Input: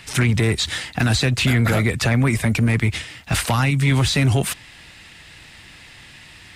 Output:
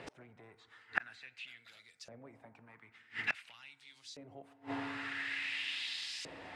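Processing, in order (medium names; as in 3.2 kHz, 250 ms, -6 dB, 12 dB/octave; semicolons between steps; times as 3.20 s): FDN reverb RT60 2.2 s, low-frequency decay 1.3×, high-frequency decay 0.25×, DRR 12 dB; inverted gate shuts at -20 dBFS, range -33 dB; LFO band-pass saw up 0.48 Hz 480–5800 Hz; trim +9.5 dB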